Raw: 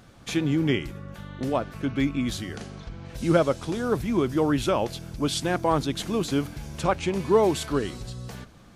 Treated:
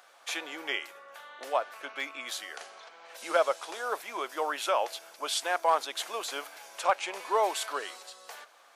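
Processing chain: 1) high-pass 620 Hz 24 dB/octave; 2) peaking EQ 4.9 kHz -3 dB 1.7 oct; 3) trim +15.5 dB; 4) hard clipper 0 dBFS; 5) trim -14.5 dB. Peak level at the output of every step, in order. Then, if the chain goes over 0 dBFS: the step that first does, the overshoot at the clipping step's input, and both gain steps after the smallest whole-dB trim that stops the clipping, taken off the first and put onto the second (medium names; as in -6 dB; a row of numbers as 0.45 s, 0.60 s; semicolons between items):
-12.0 dBFS, -12.5 dBFS, +3.0 dBFS, 0.0 dBFS, -14.5 dBFS; step 3, 3.0 dB; step 3 +12.5 dB, step 5 -11.5 dB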